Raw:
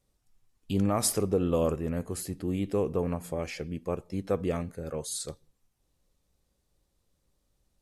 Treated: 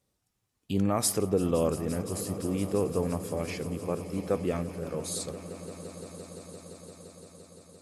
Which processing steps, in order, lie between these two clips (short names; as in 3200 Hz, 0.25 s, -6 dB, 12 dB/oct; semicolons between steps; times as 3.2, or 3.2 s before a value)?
HPF 81 Hz; on a send: swelling echo 0.172 s, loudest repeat 5, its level -18 dB